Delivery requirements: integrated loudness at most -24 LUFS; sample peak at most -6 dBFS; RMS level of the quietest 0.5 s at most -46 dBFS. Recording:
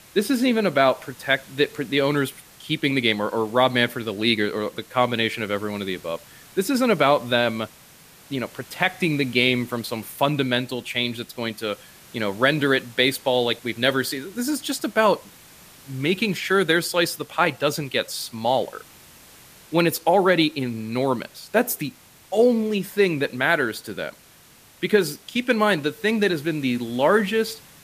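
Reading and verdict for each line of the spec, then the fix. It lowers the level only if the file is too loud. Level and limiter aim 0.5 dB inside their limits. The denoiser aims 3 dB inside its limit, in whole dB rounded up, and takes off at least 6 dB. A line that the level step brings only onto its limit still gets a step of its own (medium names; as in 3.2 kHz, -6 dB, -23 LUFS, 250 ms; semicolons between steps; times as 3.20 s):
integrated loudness -22.5 LUFS: fail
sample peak -4.5 dBFS: fail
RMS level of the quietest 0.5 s -51 dBFS: pass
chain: trim -2 dB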